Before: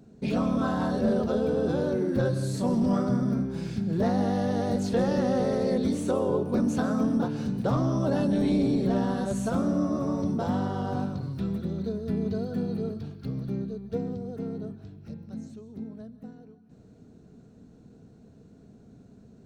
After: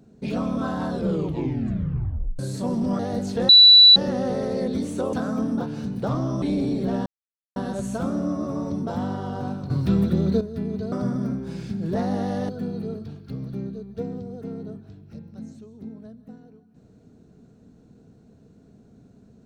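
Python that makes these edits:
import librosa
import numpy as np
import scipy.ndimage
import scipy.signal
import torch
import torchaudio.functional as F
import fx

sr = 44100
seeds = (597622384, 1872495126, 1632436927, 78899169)

y = fx.edit(x, sr, fx.tape_stop(start_s=0.89, length_s=1.5),
    fx.move(start_s=2.99, length_s=1.57, to_s=12.44),
    fx.insert_tone(at_s=5.06, length_s=0.47, hz=3950.0, db=-7.0),
    fx.cut(start_s=6.23, length_s=0.52),
    fx.cut(start_s=8.04, length_s=0.4),
    fx.insert_silence(at_s=9.08, length_s=0.5),
    fx.clip_gain(start_s=11.22, length_s=0.71, db=10.0), tone=tone)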